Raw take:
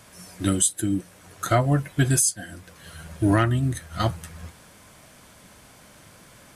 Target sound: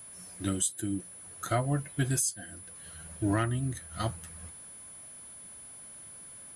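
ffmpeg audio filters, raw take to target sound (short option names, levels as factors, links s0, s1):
-af "aeval=exprs='val(0)+0.0141*sin(2*PI*10000*n/s)':c=same,volume=0.376"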